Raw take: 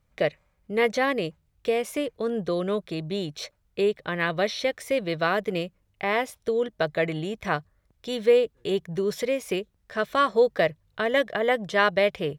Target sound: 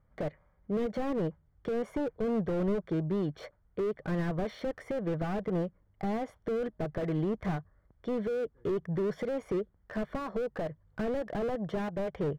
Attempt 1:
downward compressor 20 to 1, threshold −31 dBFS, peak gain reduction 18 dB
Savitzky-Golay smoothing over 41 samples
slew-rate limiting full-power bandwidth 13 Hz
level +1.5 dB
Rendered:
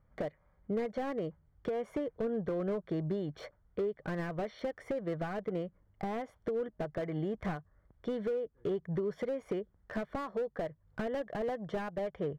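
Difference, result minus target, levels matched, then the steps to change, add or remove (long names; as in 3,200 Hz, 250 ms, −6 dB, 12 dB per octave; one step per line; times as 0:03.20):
downward compressor: peak gain reduction +7.5 dB
change: downward compressor 20 to 1, threshold −23 dBFS, peak gain reduction 10 dB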